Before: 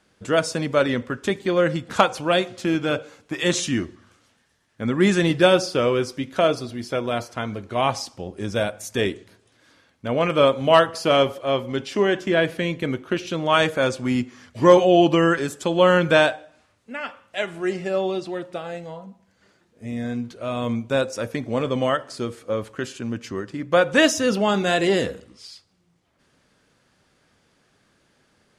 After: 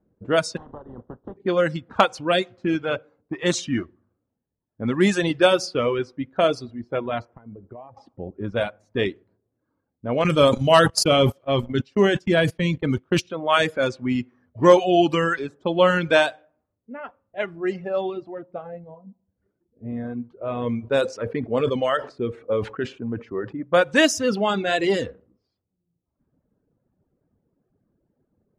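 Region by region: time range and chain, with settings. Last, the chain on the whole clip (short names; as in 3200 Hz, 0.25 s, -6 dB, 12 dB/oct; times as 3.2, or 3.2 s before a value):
0.56–1.36 spectral contrast lowered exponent 0.28 + compressor 8:1, threshold -23 dBFS + running mean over 19 samples
7.25–7.97 polynomial smoothing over 25 samples + compressor 16:1, threshold -31 dBFS
10.24–13.3 tone controls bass +9 dB, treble +7 dB + gate -24 dBFS, range -51 dB + sustainer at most 39 dB/s
20.41–23.63 bell 440 Hz +7 dB 0.31 oct + short-mantissa float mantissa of 6-bit + sustainer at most 80 dB/s
whole clip: reverb removal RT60 1.5 s; low-pass opened by the level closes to 420 Hz, open at -15.5 dBFS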